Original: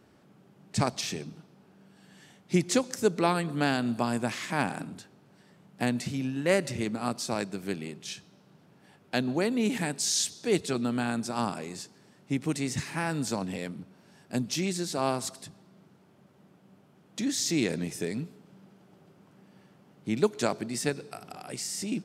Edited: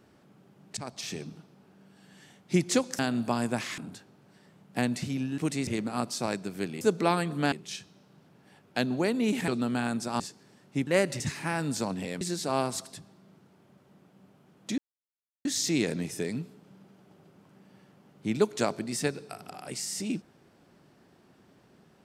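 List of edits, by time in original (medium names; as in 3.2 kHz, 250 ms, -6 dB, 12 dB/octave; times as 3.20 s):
0.77–1.25 s: fade in, from -19.5 dB
2.99–3.70 s: move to 7.89 s
4.49–4.82 s: delete
6.42–6.75 s: swap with 12.42–12.71 s
9.85–10.71 s: delete
11.43–11.75 s: delete
13.72–14.70 s: delete
17.27 s: insert silence 0.67 s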